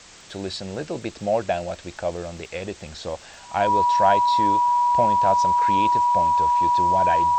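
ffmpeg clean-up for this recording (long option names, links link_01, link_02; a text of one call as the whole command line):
ffmpeg -i in.wav -af "adeclick=threshold=4,bandreject=frequency=970:width=30,afftdn=noise_reduction=24:noise_floor=-44" out.wav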